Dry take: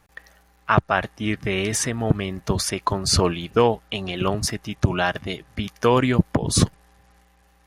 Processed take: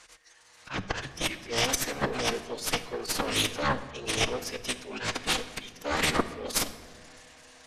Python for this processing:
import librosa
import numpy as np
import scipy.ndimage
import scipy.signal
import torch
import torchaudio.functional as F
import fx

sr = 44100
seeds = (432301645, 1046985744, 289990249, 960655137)

p1 = fx.weighting(x, sr, curve='ITU-R 468')
p2 = fx.filter_sweep_highpass(p1, sr, from_hz=63.0, to_hz=410.0, start_s=0.08, end_s=1.58, q=7.8)
p3 = fx.level_steps(p2, sr, step_db=10)
p4 = p2 + F.gain(torch.from_numpy(p3), -2.0).numpy()
p5 = fx.auto_swell(p4, sr, attack_ms=492.0)
p6 = fx.over_compress(p5, sr, threshold_db=-23.0, ratio=-0.5)
p7 = fx.low_shelf(p6, sr, hz=270.0, db=3.5)
p8 = fx.cheby_harmonics(p7, sr, harmonics=(3, 6, 7), levels_db=(-23, -17, -13), full_scale_db=-8.0)
p9 = fx.pitch_keep_formants(p8, sr, semitones=-8.5)
p10 = fx.room_shoebox(p9, sr, seeds[0], volume_m3=1600.0, walls='mixed', distance_m=0.54)
y = F.gain(torch.from_numpy(p10), 1.5).numpy()